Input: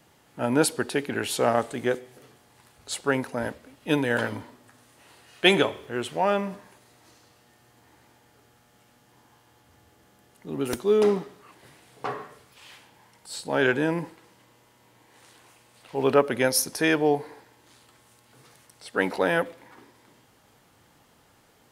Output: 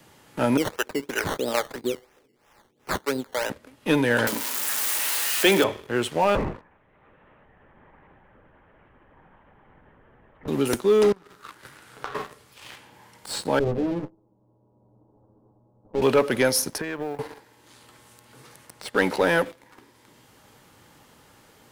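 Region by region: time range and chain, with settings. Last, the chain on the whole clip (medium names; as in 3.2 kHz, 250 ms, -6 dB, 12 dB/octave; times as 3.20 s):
0.57–3.50 s: harmonic tremolo 2.3 Hz, depth 100%, crossover 410 Hz + high-pass 320 Hz + decimation with a swept rate 14×, swing 60% 3 Hz
4.27–5.64 s: zero-crossing glitches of -19.5 dBFS + high-pass 180 Hz 24 dB/octave + tape noise reduction on one side only encoder only
6.35–10.48 s: low-pass 2.2 kHz 24 dB/octave + LPC vocoder at 8 kHz whisper
11.12–12.15 s: compression 12:1, threshold -43 dBFS + peaking EQ 1.4 kHz +12.5 dB 0.55 oct
13.59–16.02 s: comb filter that takes the minimum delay 9.5 ms + Gaussian low-pass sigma 13 samples
16.78–17.19 s: tone controls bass -4 dB, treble -14 dB + compression 8:1, threshold -34 dBFS + modulation noise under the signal 32 dB
whole clip: band-stop 700 Hz, Q 12; waveshaping leveller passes 2; three bands compressed up and down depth 40%; trim -2.5 dB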